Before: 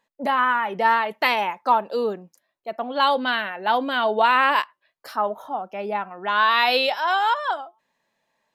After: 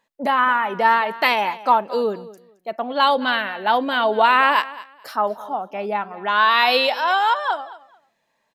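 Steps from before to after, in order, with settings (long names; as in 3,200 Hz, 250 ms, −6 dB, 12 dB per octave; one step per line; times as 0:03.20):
repeating echo 219 ms, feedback 20%, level −18 dB
level +2.5 dB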